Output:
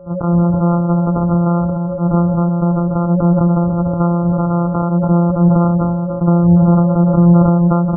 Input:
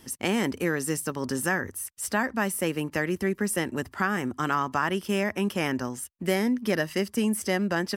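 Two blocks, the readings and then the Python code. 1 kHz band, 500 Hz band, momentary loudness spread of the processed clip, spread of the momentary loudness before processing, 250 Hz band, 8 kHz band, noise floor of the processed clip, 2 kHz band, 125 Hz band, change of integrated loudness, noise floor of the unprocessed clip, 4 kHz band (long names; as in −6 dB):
+9.5 dB, +9.5 dB, 6 LU, 4 LU, +15.5 dB, below −40 dB, −20 dBFS, below −15 dB, +23.5 dB, +14.0 dB, −55 dBFS, below −40 dB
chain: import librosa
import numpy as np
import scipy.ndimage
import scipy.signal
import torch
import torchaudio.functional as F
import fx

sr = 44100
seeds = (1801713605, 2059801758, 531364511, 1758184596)

y = np.r_[np.sort(x[:len(x) // 256 * 256].reshape(-1, 256), axis=1).ravel(), x[len(x) // 256 * 256:]]
y = fx.recorder_agc(y, sr, target_db=-14.0, rise_db_per_s=13.0, max_gain_db=30)
y = fx.peak_eq(y, sr, hz=180.0, db=10.0, octaves=0.27)
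y = fx.spec_gate(y, sr, threshold_db=-25, keep='strong')
y = y + 10.0 ** (-42.0 / 20.0) * np.sin(2.0 * np.pi * 550.0 * np.arange(len(y)) / sr)
y = fx.brickwall_lowpass(y, sr, high_hz=1500.0)
y = y + 10.0 ** (-17.5 / 20.0) * np.pad(y, (int(289 * sr / 1000.0), 0))[:len(y)]
y = fx.sustainer(y, sr, db_per_s=21.0)
y = y * 10.0 ** (6.5 / 20.0)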